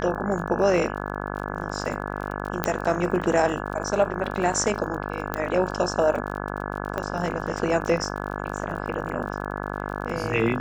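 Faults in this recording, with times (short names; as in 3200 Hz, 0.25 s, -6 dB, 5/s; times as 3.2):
buzz 50 Hz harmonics 34 -31 dBFS
crackle 38/s -33 dBFS
2.64 pop -7 dBFS
5.34 pop -12 dBFS
6.98 pop -15 dBFS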